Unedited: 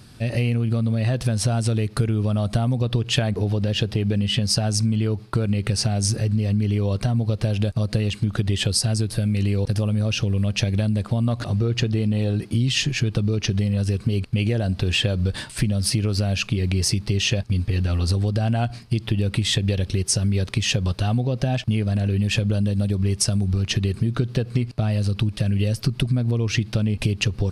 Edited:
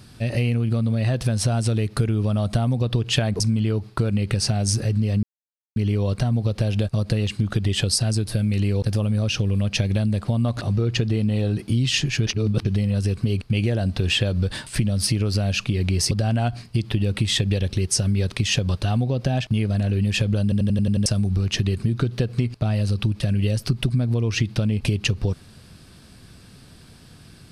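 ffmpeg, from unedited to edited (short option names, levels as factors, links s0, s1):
-filter_complex "[0:a]asplit=13[s0][s1][s2][s3][s4][s5][s6][s7][s8][s9][s10][s11][s12];[s0]atrim=end=3.402[s13];[s1]atrim=start=4.758:end=6.59,asetpts=PTS-STARTPTS,afade=t=out:st=1.828:d=0.004:c=hsin,apad=pad_dur=0.53[s14];[s2]atrim=start=6.59:end=13.102,asetpts=PTS-STARTPTS,afade=t=in:d=0.004:c=hsin[s15];[s3]atrim=start=13.098:end=13.482,asetpts=PTS-STARTPTS,areverse[s16];[s4]atrim=start=13.478:end=16.942[s17];[s5]atrim=start=18.278:end=22.692[s18];[s6]atrim=start=22.598:end=22.692[s19];[s7]atrim=start=22.598:end=22.692[s20];[s8]atrim=start=22.598:end=22.692[s21];[s9]atrim=start=22.598:end=22.692[s22];[s10]atrim=start=22.598:end=22.692[s23];[s11]atrim=start=22.598:end=22.692[s24];[s12]atrim=start=23.228[s25];[s14][s15]concat=n=2:v=0:a=1[s26];[s13][s26]acrossfade=d=0.004:c1=hsin:c2=hsin[s27];[s27][s16]acrossfade=d=0.004:c1=hsin:c2=hsin[s28];[s28][s17]acrossfade=d=0.004:c1=hsin:c2=hsin[s29];[s29][s18]acrossfade=d=0.004:c1=hsin:c2=hsin[s30];[s30][s19]acrossfade=d=0.004:c1=hsin:c2=hsin[s31];[s31][s20]acrossfade=d=0.004:c1=hsin:c2=hsin[s32];[s32][s21]acrossfade=d=0.004:c1=hsin:c2=hsin[s33];[s33][s22]acrossfade=d=0.004:c1=hsin:c2=hsin[s34];[s34][s23]acrossfade=d=0.004:c1=hsin:c2=hsin[s35];[s35][s24]acrossfade=d=0.004:c1=hsin:c2=hsin[s36];[s36][s25]acrossfade=d=0.004:c1=hsin:c2=hsin"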